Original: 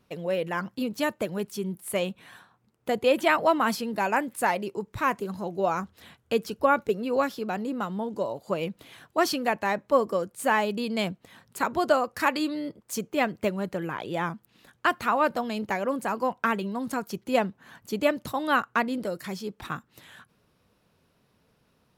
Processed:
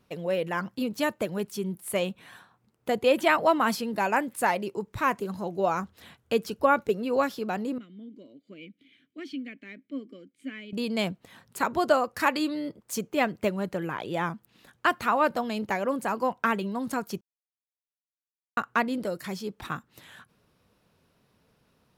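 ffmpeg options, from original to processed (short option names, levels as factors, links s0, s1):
-filter_complex "[0:a]asettb=1/sr,asplit=3[s0][s1][s2];[s0]atrim=end=7.784[s3];[s1]atrim=start=7.78:end=10.73,asetpts=PTS-STARTPTS,afade=t=in:d=0.004:c=qsin,afade=t=out:st=2.946:d=0.004:c=qsin,asplit=3[s4][s5][s6];[s4]bandpass=f=270:t=q:w=8,volume=1[s7];[s5]bandpass=f=2290:t=q:w=8,volume=0.501[s8];[s6]bandpass=f=3010:t=q:w=8,volume=0.355[s9];[s7][s8][s9]amix=inputs=3:normalize=0[s10];[s2]atrim=start=10.726[s11];[s3][s10]acrossfade=d=0.004:c1=hsin:c2=qsin[s12];[s12][s11]acrossfade=d=0.004:c1=qsin:c2=hsin,asplit=3[s13][s14][s15];[s13]atrim=end=17.21,asetpts=PTS-STARTPTS,afade=t=out:st=17.206:d=0.004:c=hsin[s16];[s14]atrim=start=17.21:end=18.57,asetpts=PTS-STARTPTS,volume=0[s17];[s15]atrim=start=18.57,asetpts=PTS-STARTPTS,afade=t=in:d=0.004:c=hsin[s18];[s16][s17][s18]concat=n=3:v=0:a=1"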